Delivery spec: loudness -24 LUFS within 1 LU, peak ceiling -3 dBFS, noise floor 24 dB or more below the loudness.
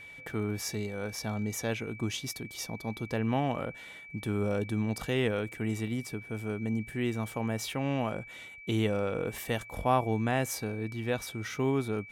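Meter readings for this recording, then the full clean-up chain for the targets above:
steady tone 2.3 kHz; tone level -46 dBFS; loudness -32.5 LUFS; peak level -13.0 dBFS; loudness target -24.0 LUFS
-> band-stop 2.3 kHz, Q 30; trim +8.5 dB

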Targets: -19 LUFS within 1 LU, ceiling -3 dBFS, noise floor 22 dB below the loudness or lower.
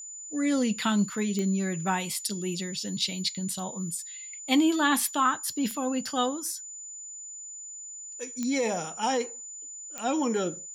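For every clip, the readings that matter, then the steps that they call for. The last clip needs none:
clicks found 4; steady tone 7 kHz; tone level -39 dBFS; loudness -29.0 LUFS; peak level -11.5 dBFS; loudness target -19.0 LUFS
-> de-click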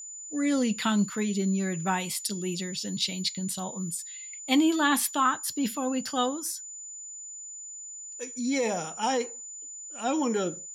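clicks found 0; steady tone 7 kHz; tone level -39 dBFS
-> band-stop 7 kHz, Q 30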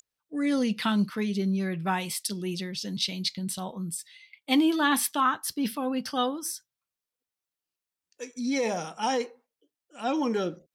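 steady tone not found; loudness -28.5 LUFS; peak level -11.5 dBFS; loudness target -19.0 LUFS
-> trim +9.5 dB; peak limiter -3 dBFS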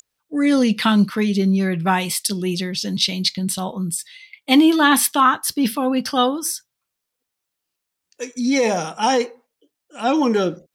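loudness -19.0 LUFS; peak level -3.0 dBFS; noise floor -81 dBFS

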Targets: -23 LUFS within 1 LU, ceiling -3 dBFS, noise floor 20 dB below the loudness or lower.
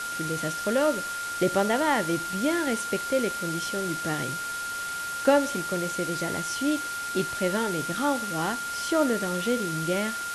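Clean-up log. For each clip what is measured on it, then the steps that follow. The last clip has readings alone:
steady tone 1.4 kHz; tone level -31 dBFS; noise floor -33 dBFS; noise floor target -47 dBFS; loudness -27.0 LUFS; peak level -8.5 dBFS; loudness target -23.0 LUFS
-> band-stop 1.4 kHz, Q 30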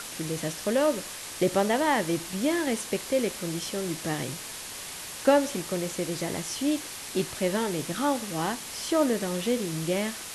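steady tone not found; noise floor -39 dBFS; noise floor target -48 dBFS
-> noise reduction 9 dB, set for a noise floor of -39 dBFS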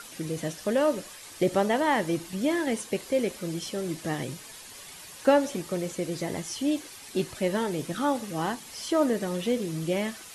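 noise floor -46 dBFS; noise floor target -49 dBFS
-> noise reduction 6 dB, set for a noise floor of -46 dBFS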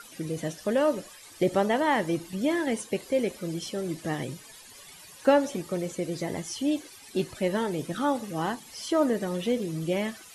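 noise floor -49 dBFS; loudness -28.5 LUFS; peak level -9.5 dBFS; loudness target -23.0 LUFS
-> trim +5.5 dB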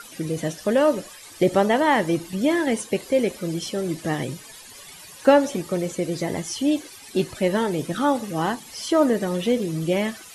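loudness -23.0 LUFS; peak level -4.0 dBFS; noise floor -44 dBFS

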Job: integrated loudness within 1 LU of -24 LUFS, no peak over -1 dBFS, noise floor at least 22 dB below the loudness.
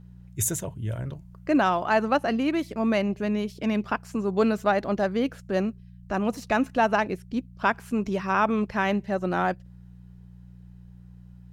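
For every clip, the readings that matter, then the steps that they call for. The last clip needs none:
hum 60 Hz; highest harmonic 180 Hz; hum level -44 dBFS; loudness -26.0 LUFS; peak level -9.5 dBFS; loudness target -24.0 LUFS
-> de-hum 60 Hz, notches 3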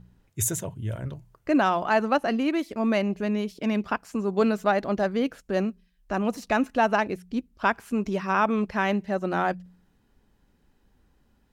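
hum not found; loudness -26.0 LUFS; peak level -9.5 dBFS; loudness target -24.0 LUFS
-> trim +2 dB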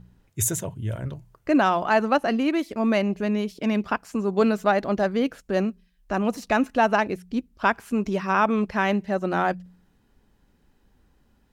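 loudness -24.0 LUFS; peak level -7.5 dBFS; noise floor -64 dBFS

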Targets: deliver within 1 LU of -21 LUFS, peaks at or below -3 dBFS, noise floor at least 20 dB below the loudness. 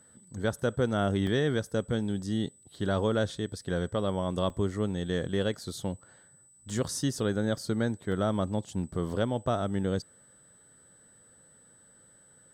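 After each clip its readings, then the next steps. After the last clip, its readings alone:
dropouts 5; longest dropout 2.0 ms; steady tone 8 kHz; tone level -57 dBFS; loudness -30.5 LUFS; peak level -15.0 dBFS; loudness target -21.0 LUFS
-> interpolate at 1.27/4.50/6.70/8.12/9.10 s, 2 ms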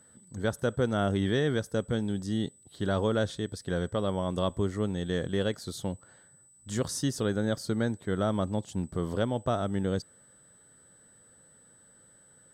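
dropouts 0; steady tone 8 kHz; tone level -57 dBFS
-> band-stop 8 kHz, Q 30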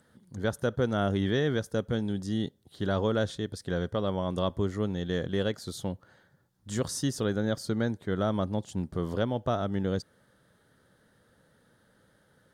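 steady tone not found; loudness -30.5 LUFS; peak level -15.0 dBFS; loudness target -21.0 LUFS
-> trim +9.5 dB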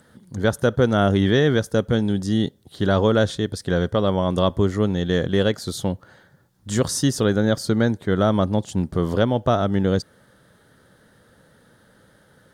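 loudness -21.0 LUFS; peak level -5.5 dBFS; noise floor -57 dBFS

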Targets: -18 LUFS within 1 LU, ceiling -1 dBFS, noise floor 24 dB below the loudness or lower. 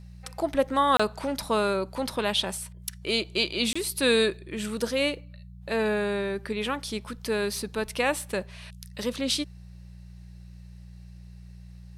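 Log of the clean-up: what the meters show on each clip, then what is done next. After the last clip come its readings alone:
dropouts 2; longest dropout 25 ms; hum 60 Hz; highest harmonic 180 Hz; hum level -43 dBFS; loudness -27.5 LUFS; peak level -10.0 dBFS; loudness target -18.0 LUFS
-> interpolate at 0.97/3.73 s, 25 ms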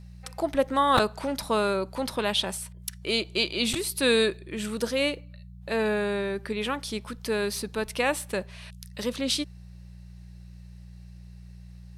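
dropouts 0; hum 60 Hz; highest harmonic 180 Hz; hum level -43 dBFS
-> de-hum 60 Hz, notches 3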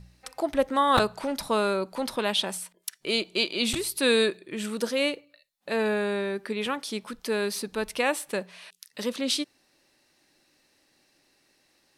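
hum not found; loudness -27.5 LUFS; peak level -7.0 dBFS; loudness target -18.0 LUFS
-> trim +9.5 dB; peak limiter -1 dBFS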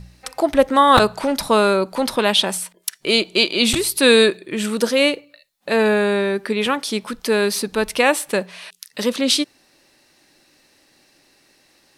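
loudness -18.0 LUFS; peak level -1.0 dBFS; noise floor -58 dBFS

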